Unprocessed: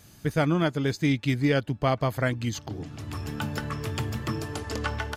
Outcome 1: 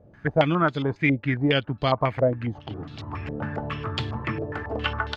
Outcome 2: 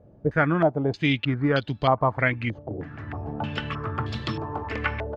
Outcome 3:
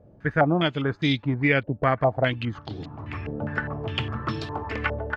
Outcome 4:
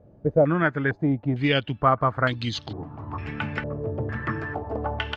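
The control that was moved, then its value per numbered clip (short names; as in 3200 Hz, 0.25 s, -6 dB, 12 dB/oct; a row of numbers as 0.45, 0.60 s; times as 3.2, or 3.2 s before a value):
stepped low-pass, rate: 7.3, 3.2, 4.9, 2.2 Hz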